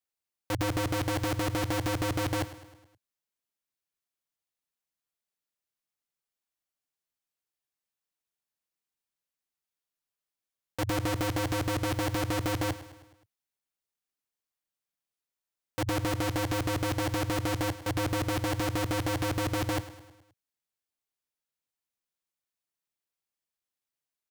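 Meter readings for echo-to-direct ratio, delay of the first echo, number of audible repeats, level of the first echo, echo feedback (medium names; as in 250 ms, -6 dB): -13.5 dB, 105 ms, 4, -15.0 dB, 53%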